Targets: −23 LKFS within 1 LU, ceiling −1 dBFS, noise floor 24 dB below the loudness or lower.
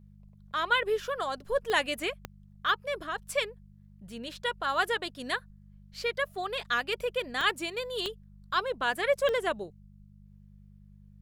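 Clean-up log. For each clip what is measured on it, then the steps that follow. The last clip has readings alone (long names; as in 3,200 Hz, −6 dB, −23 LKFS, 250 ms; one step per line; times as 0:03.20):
number of clicks 5; mains hum 50 Hz; hum harmonics up to 200 Hz; level of the hum −51 dBFS; integrated loudness −30.5 LKFS; sample peak −12.0 dBFS; target loudness −23.0 LKFS
→ click removal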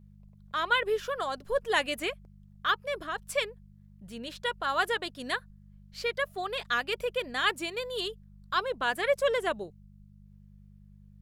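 number of clicks 0; mains hum 50 Hz; hum harmonics up to 200 Hz; level of the hum −51 dBFS
→ hum removal 50 Hz, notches 4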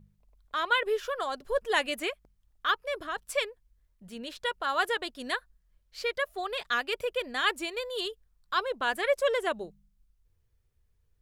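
mains hum none found; integrated loudness −30.5 LKFS; sample peak −12.0 dBFS; target loudness −23.0 LKFS
→ level +7.5 dB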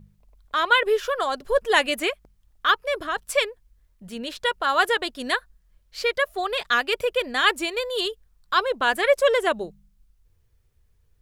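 integrated loudness −23.0 LKFS; sample peak −4.5 dBFS; background noise floor −63 dBFS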